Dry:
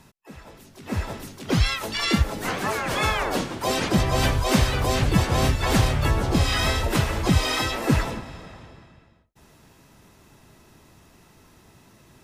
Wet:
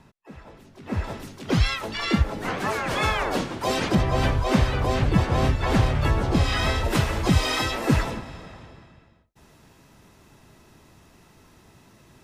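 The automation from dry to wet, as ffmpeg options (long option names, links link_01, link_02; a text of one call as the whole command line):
ffmpeg -i in.wav -af "asetnsamples=nb_out_samples=441:pad=0,asendcmd='1.04 lowpass f 5300;1.81 lowpass f 2600;2.6 lowpass f 5700;3.95 lowpass f 2200;5.95 lowpass f 3700;6.85 lowpass f 9600',lowpass=frequency=2300:poles=1" out.wav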